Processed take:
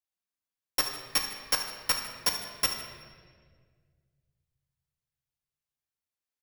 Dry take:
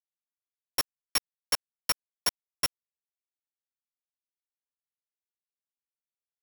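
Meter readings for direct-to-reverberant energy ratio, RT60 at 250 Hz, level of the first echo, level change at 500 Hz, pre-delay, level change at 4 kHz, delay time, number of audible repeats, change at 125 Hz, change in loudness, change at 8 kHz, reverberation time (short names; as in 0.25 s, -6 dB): 1.5 dB, 2.3 s, -12.5 dB, +2.5 dB, 4 ms, +2.0 dB, 73 ms, 1, +2.5 dB, +1.5 dB, +0.5 dB, 1.7 s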